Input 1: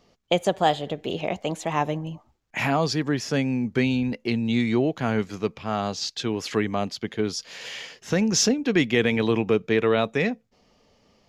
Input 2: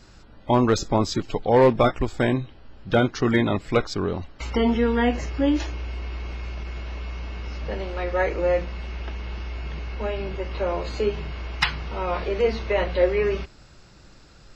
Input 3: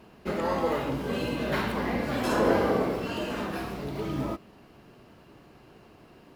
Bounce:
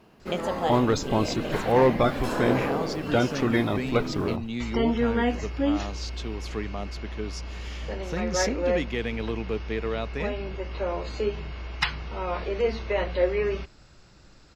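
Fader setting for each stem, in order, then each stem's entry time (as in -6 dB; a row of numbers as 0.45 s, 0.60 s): -9.0 dB, -3.5 dB, -3.0 dB; 0.00 s, 0.20 s, 0.00 s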